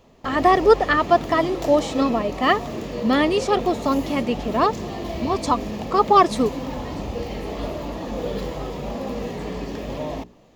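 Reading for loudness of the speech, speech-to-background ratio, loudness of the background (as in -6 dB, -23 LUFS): -20.5 LUFS, 9.5 dB, -30.0 LUFS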